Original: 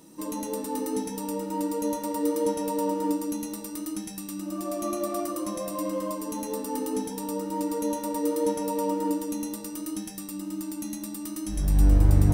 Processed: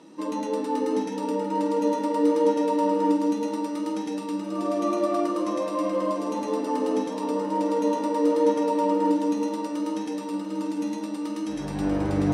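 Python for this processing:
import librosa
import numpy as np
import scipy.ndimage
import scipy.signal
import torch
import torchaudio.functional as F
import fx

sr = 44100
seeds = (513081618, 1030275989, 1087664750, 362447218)

p1 = fx.bandpass_edges(x, sr, low_hz=250.0, high_hz=3700.0)
p2 = p1 + fx.echo_alternate(p1, sr, ms=346, hz=820.0, feedback_pct=84, wet_db=-10, dry=0)
y = F.gain(torch.from_numpy(p2), 5.5).numpy()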